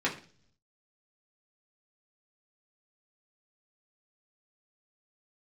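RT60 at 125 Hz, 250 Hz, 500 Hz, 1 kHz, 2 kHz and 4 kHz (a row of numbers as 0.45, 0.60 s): 1.0, 0.70, 0.50, 0.40, 0.40, 0.50 s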